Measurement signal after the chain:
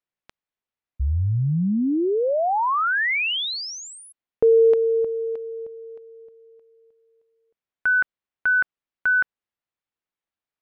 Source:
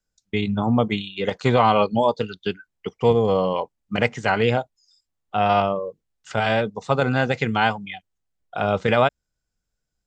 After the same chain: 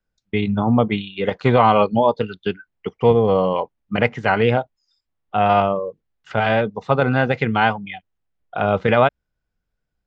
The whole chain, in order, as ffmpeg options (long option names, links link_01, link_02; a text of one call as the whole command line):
ffmpeg -i in.wav -af "lowpass=2900,volume=3dB" out.wav